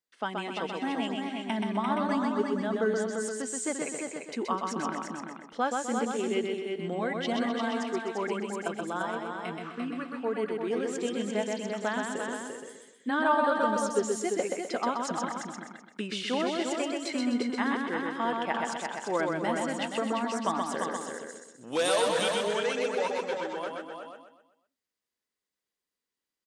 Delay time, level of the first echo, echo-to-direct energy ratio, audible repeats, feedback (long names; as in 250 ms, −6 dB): 127 ms, −3.5 dB, 0.0 dB, 10, repeats not evenly spaced